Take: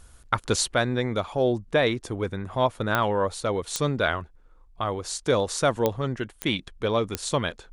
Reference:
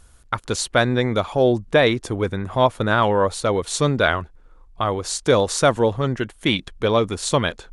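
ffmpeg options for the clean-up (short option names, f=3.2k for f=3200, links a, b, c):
-af "adeclick=t=4,asetnsamples=n=441:p=0,asendcmd='0.74 volume volume 6dB',volume=0dB"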